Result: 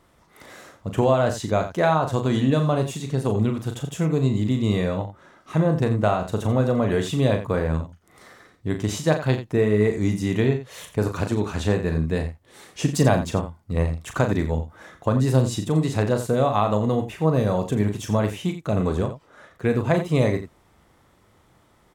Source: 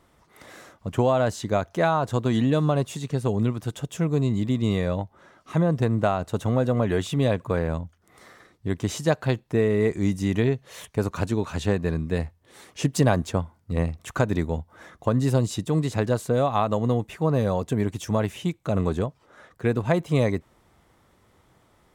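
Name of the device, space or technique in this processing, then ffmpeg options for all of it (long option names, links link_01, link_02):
slapback doubling: -filter_complex "[0:a]asplit=3[link_01][link_02][link_03];[link_02]adelay=38,volume=-7dB[link_04];[link_03]adelay=87,volume=-11.5dB[link_05];[link_01][link_04][link_05]amix=inputs=3:normalize=0,volume=1dB"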